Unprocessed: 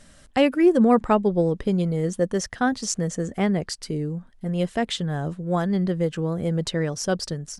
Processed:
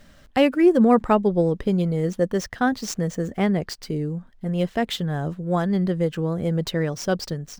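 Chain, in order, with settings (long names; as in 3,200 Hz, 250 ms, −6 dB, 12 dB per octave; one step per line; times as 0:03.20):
running median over 5 samples
level +1 dB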